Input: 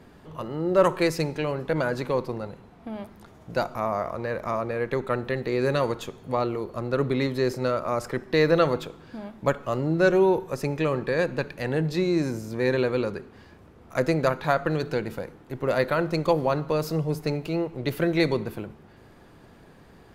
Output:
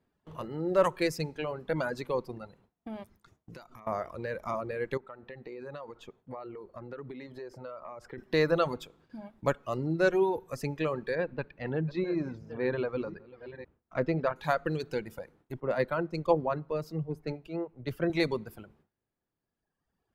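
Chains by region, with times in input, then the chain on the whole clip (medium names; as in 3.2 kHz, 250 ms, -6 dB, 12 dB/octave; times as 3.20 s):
3.03–3.87 s: compression 5:1, threshold -37 dBFS + dynamic bell 700 Hz, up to -8 dB, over -55 dBFS, Q 1.3
4.97–8.18 s: low-pass 1.3 kHz 6 dB/octave + bass shelf 360 Hz -7 dB + compression 8:1, threshold -31 dBFS
11.15–14.36 s: chunks repeated in reverse 499 ms, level -12 dB + distance through air 280 m
15.60–18.10 s: treble shelf 3.5 kHz -12 dB + three bands expanded up and down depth 70%
whole clip: gate with hold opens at -38 dBFS; reverb removal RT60 1.7 s; trim -4.5 dB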